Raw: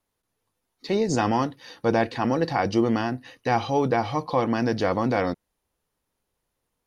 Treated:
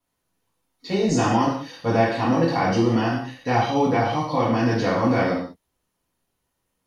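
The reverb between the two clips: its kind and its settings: gated-style reverb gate 230 ms falling, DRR -8 dB; trim -5.5 dB

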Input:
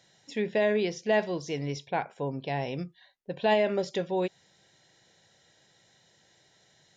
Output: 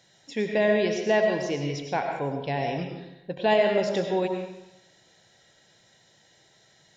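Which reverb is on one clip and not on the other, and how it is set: algorithmic reverb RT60 0.87 s, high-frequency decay 0.8×, pre-delay 60 ms, DRR 3 dB; trim +2 dB

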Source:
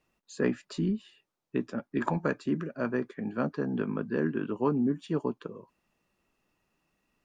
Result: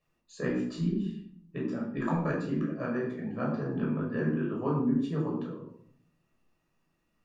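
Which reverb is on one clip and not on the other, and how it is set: simulated room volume 990 m³, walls furnished, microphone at 5.9 m; trim -9 dB

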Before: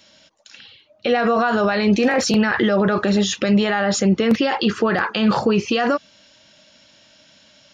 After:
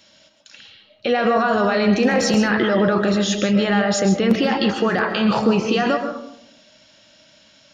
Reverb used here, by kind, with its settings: algorithmic reverb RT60 0.79 s, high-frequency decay 0.3×, pre-delay 90 ms, DRR 6 dB; trim -1 dB

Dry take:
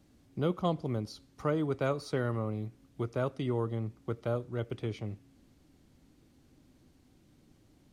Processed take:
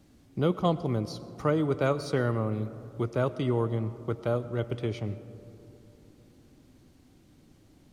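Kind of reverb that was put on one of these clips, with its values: algorithmic reverb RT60 3.3 s, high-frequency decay 0.25×, pre-delay 70 ms, DRR 15 dB; trim +4.5 dB

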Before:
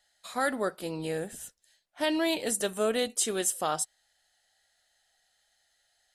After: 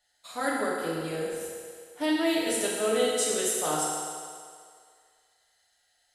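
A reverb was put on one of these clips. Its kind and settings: FDN reverb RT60 2.1 s, low-frequency decay 0.7×, high-frequency decay 0.95×, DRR -6 dB; trim -5 dB

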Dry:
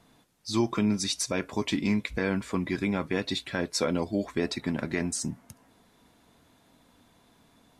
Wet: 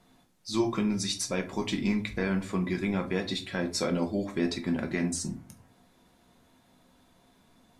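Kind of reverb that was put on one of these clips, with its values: simulated room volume 170 m³, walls furnished, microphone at 1 m; trim -3 dB

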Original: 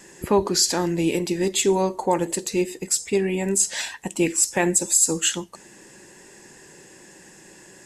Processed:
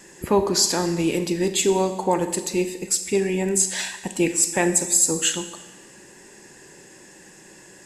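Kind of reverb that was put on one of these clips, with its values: Schroeder reverb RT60 1.2 s, combs from 29 ms, DRR 9.5 dB

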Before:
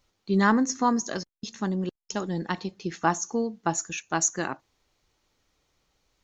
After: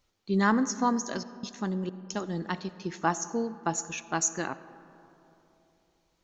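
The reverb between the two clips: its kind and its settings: algorithmic reverb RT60 3.2 s, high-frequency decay 0.35×, pre-delay 25 ms, DRR 15 dB; trim -3 dB

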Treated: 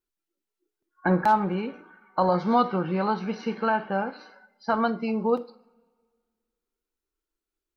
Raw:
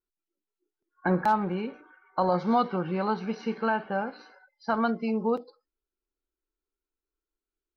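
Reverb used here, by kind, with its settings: two-slope reverb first 0.37 s, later 1.8 s, from -22 dB, DRR 11.5 dB; trim +2.5 dB

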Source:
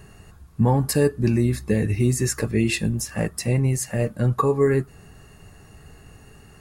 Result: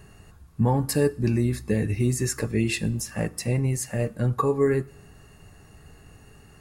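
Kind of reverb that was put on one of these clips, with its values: FDN reverb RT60 0.73 s, low-frequency decay 1×, high-frequency decay 0.95×, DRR 18.5 dB; trim -3 dB

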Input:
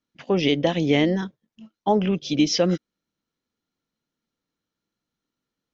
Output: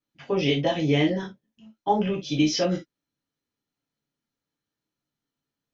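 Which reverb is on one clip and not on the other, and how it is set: gated-style reverb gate 90 ms falling, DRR -3 dB; trim -7 dB

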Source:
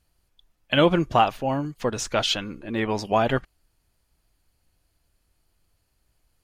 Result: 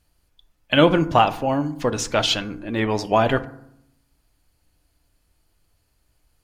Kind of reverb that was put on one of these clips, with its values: FDN reverb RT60 0.74 s, low-frequency decay 1.35×, high-frequency decay 0.45×, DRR 12 dB; trim +3 dB

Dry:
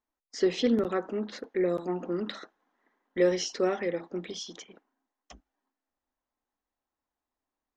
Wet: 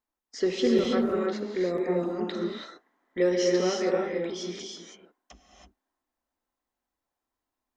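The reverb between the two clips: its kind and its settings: gated-style reverb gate 350 ms rising, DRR -0.5 dB; trim -1 dB

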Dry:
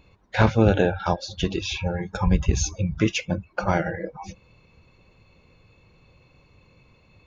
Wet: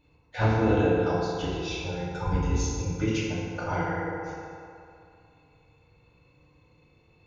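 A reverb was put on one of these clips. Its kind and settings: FDN reverb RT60 2.5 s, low-frequency decay 0.75×, high-frequency decay 0.5×, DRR -8 dB; trim -13 dB

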